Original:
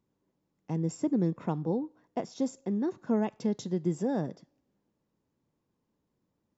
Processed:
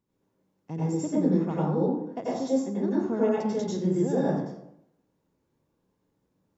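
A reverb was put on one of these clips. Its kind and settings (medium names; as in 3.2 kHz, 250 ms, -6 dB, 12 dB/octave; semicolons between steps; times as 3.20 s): plate-style reverb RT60 0.76 s, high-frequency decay 0.55×, pre-delay 80 ms, DRR -7.5 dB; trim -3 dB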